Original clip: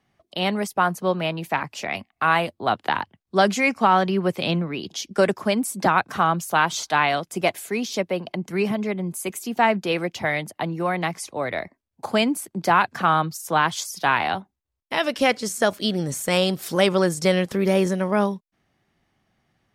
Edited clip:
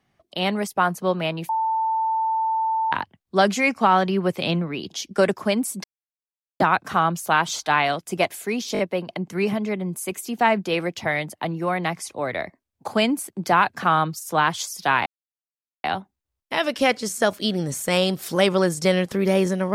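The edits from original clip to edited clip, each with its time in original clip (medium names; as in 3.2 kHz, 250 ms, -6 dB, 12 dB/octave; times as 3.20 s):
1.49–2.92 s: bleep 890 Hz -19.5 dBFS
5.84 s: insert silence 0.76 s
7.97 s: stutter 0.02 s, 4 plays
14.24 s: insert silence 0.78 s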